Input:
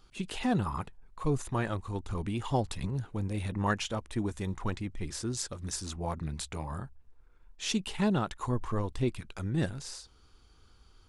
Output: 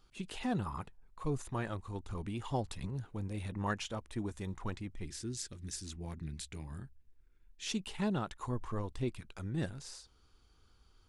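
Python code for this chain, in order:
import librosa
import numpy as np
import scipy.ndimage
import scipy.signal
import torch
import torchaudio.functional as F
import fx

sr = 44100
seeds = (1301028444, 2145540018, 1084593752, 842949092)

y = fx.band_shelf(x, sr, hz=810.0, db=-10.5, octaves=1.7, at=(5.06, 7.67))
y = F.gain(torch.from_numpy(y), -6.0).numpy()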